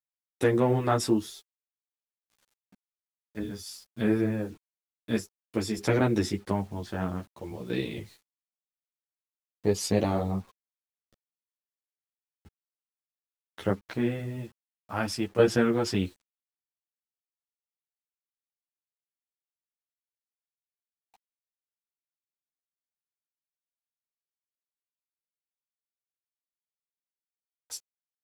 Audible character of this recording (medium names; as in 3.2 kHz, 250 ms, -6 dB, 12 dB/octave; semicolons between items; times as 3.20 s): tremolo saw down 0.52 Hz, depth 60%; a quantiser's noise floor 10-bit, dither none; a shimmering, thickened sound